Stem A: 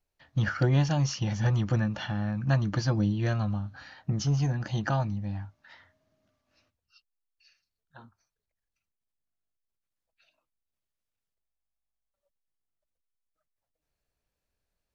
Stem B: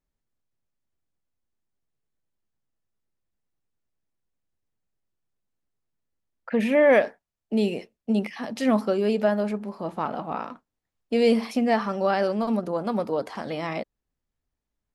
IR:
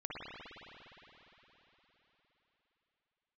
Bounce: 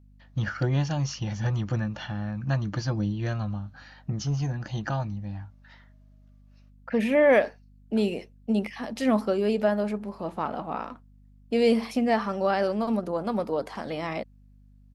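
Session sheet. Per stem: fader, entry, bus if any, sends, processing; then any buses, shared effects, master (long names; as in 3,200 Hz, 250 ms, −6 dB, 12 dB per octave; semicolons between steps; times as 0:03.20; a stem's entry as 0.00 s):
−1.5 dB, 0.00 s, no send, mains hum 50 Hz, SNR 21 dB
−1.5 dB, 0.40 s, no send, no processing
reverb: not used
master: no processing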